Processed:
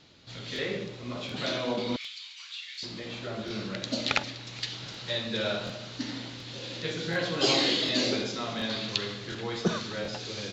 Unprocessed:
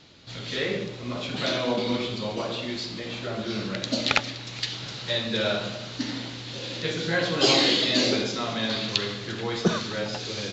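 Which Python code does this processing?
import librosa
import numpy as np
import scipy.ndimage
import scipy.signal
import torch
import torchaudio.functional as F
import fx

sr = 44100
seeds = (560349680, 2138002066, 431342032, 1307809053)

y = fx.cheby2_highpass(x, sr, hz=540.0, order=4, stop_db=60, at=(1.96, 2.83))
y = fx.buffer_crackle(y, sr, first_s=0.54, period_s=0.73, block=1024, kind='repeat')
y = y * 10.0 ** (-4.5 / 20.0)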